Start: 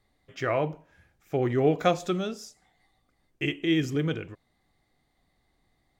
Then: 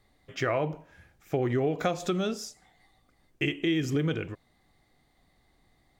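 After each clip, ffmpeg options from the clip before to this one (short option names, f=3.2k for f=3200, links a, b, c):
-filter_complex "[0:a]asplit=2[a][b];[b]alimiter=limit=-21dB:level=0:latency=1:release=191,volume=0dB[c];[a][c]amix=inputs=2:normalize=0,acompressor=threshold=-22dB:ratio=6,volume=-1.5dB"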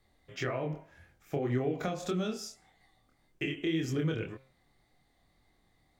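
-filter_complex "[0:a]bandreject=f=132.6:t=h:w=4,bandreject=f=265.2:t=h:w=4,bandreject=f=397.8:t=h:w=4,bandreject=f=530.4:t=h:w=4,bandreject=f=663:t=h:w=4,bandreject=f=795.6:t=h:w=4,bandreject=f=928.2:t=h:w=4,bandreject=f=1.0608k:t=h:w=4,bandreject=f=1.1934k:t=h:w=4,bandreject=f=1.326k:t=h:w=4,bandreject=f=1.4586k:t=h:w=4,bandreject=f=1.5912k:t=h:w=4,bandreject=f=1.7238k:t=h:w=4,bandreject=f=1.8564k:t=h:w=4,bandreject=f=1.989k:t=h:w=4,bandreject=f=2.1216k:t=h:w=4,bandreject=f=2.2542k:t=h:w=4,bandreject=f=2.3868k:t=h:w=4,bandreject=f=2.5194k:t=h:w=4,bandreject=f=2.652k:t=h:w=4,bandreject=f=2.7846k:t=h:w=4,bandreject=f=2.9172k:t=h:w=4,bandreject=f=3.0498k:t=h:w=4,bandreject=f=3.1824k:t=h:w=4,bandreject=f=3.315k:t=h:w=4,bandreject=f=3.4476k:t=h:w=4,flanger=delay=22.5:depth=4.9:speed=1.8,acrossover=split=350[a][b];[b]acompressor=threshold=-33dB:ratio=6[c];[a][c]amix=inputs=2:normalize=0"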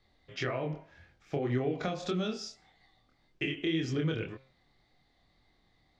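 -af "lowpass=f=4.6k:t=q:w=1.5"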